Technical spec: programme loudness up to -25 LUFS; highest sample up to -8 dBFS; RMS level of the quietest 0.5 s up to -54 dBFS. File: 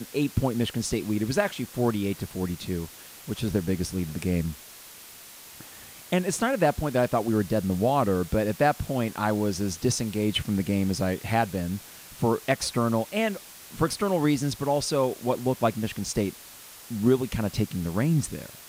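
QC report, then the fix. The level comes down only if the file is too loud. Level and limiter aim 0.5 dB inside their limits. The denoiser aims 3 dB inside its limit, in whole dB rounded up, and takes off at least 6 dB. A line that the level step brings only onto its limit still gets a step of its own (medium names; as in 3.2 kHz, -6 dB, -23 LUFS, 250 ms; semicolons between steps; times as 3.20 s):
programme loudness -27.0 LUFS: pass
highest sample -9.0 dBFS: pass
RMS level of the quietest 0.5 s -46 dBFS: fail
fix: noise reduction 11 dB, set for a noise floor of -46 dBFS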